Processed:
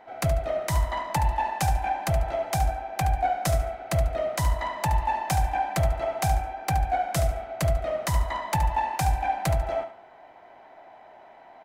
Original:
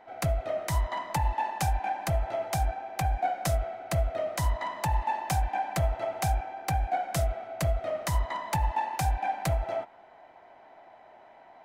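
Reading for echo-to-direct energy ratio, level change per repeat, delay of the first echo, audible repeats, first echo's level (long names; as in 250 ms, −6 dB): −10.0 dB, −11.5 dB, 72 ms, 3, −10.5 dB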